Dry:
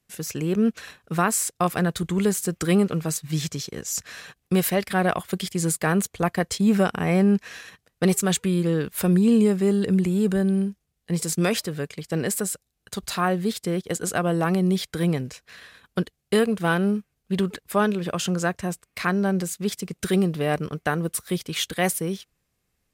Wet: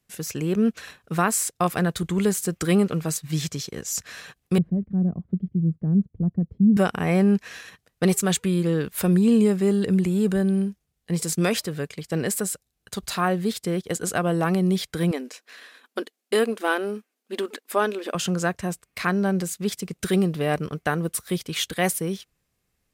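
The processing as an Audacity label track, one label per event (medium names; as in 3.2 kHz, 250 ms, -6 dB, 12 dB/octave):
4.580000	6.770000	resonant low-pass 190 Hz, resonance Q 1.6
15.110000	18.150000	brick-wall FIR high-pass 220 Hz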